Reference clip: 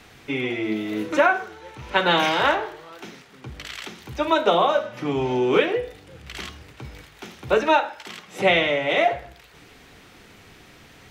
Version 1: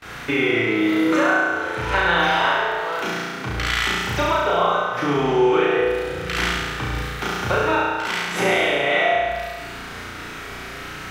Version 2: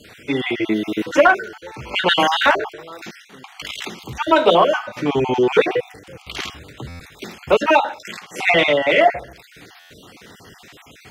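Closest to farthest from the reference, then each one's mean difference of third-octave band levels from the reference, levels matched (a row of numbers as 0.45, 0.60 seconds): 2, 1; 4.0, 9.0 decibels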